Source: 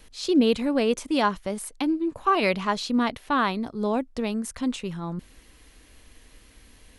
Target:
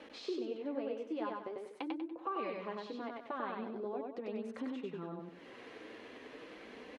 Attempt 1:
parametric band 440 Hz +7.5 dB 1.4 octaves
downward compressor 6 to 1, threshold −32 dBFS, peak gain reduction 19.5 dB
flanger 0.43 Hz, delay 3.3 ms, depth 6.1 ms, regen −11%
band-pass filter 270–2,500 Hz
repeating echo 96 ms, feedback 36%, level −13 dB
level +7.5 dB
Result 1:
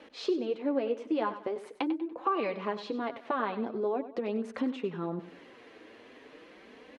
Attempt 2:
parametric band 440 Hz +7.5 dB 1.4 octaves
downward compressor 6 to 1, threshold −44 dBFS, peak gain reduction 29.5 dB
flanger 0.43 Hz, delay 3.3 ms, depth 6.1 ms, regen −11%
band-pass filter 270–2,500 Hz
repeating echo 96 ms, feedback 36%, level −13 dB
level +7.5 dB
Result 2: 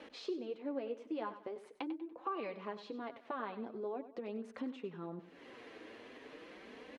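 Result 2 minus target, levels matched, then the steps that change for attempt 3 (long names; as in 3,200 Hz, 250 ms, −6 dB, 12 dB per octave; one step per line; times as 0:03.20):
echo-to-direct −10.5 dB
change: repeating echo 96 ms, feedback 36%, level −2.5 dB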